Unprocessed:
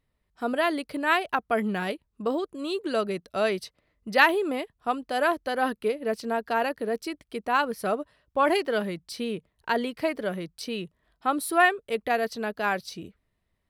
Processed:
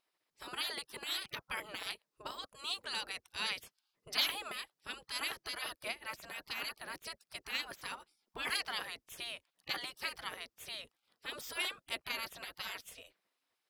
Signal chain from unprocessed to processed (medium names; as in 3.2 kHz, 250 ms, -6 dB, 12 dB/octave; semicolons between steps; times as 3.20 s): spectral gate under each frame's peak -20 dB weak; peaking EQ 5.1 kHz +5 dB 0.39 oct; trim +1 dB